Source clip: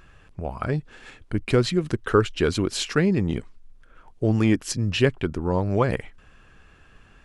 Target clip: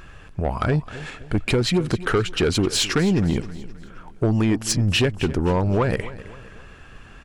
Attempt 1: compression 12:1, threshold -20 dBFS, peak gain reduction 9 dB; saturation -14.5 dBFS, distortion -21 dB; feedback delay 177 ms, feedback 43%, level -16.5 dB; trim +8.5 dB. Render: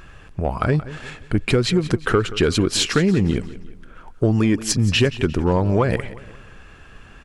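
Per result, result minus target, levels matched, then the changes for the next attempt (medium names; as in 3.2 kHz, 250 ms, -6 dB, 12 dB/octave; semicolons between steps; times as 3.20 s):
echo 85 ms early; saturation: distortion -9 dB
change: feedback delay 262 ms, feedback 43%, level -16.5 dB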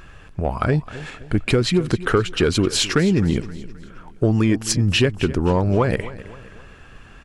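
saturation: distortion -9 dB
change: saturation -21.5 dBFS, distortion -12 dB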